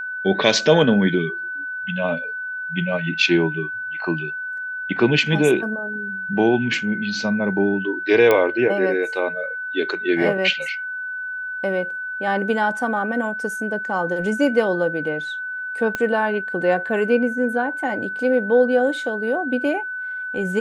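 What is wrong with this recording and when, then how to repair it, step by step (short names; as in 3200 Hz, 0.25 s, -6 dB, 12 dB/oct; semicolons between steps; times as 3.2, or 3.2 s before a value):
tone 1500 Hz -26 dBFS
8.31 pop -5 dBFS
15.95 pop -10 dBFS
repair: de-click; notch 1500 Hz, Q 30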